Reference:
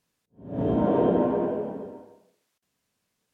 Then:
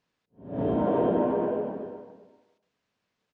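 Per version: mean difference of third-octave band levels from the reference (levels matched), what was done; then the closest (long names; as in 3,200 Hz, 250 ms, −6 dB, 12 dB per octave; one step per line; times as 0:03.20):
1.5 dB: low-shelf EQ 290 Hz −6 dB
in parallel at −1 dB: brickwall limiter −20.5 dBFS, peak gain reduction 7.5 dB
on the sum: high-frequency loss of the air 150 metres
single-tap delay 387 ms −16.5 dB
level −3.5 dB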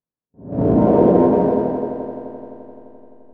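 3.0 dB: noise gate with hold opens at −56 dBFS
low-pass filter 1,100 Hz 12 dB per octave
in parallel at −11 dB: slack as between gear wheels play −24.5 dBFS
on the sum: echo machine with several playback heads 86 ms, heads second and third, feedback 65%, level −9.5 dB
level +7 dB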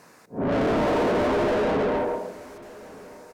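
12.5 dB: parametric band 3,200 Hz −14.5 dB 0.62 octaves
downward compressor 2 to 1, threshold −28 dBFS, peak gain reduction 6.5 dB
mid-hump overdrive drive 41 dB, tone 1,600 Hz, clips at −16 dBFS
on a send: single-tap delay 1,177 ms −20.5 dB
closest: first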